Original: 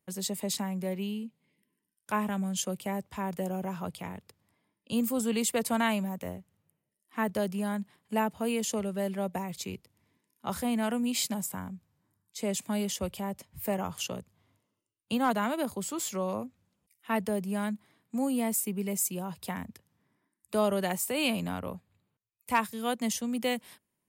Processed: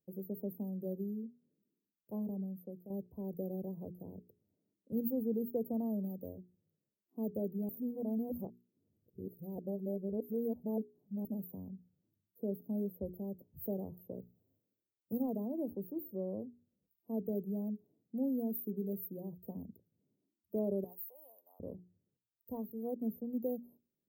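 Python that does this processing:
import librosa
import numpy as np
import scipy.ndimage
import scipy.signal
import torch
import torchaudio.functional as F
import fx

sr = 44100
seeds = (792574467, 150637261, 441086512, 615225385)

y = fx.envelope_flatten(x, sr, power=0.6, at=(14.19, 15.21), fade=0.02)
y = fx.highpass(y, sr, hz=940.0, slope=24, at=(20.84, 21.6))
y = fx.edit(y, sr, fx.fade_out_to(start_s=2.18, length_s=0.72, floor_db=-10.5),
    fx.reverse_span(start_s=7.69, length_s=3.56), tone=tone)
y = scipy.signal.sosfilt(scipy.signal.cheby2(4, 60, [1400.0, 8000.0], 'bandstop', fs=sr, output='sos'), y)
y = fx.low_shelf(y, sr, hz=280.0, db=-9.5)
y = fx.hum_notches(y, sr, base_hz=60, count=7)
y = F.gain(torch.from_numpy(y), 1.0).numpy()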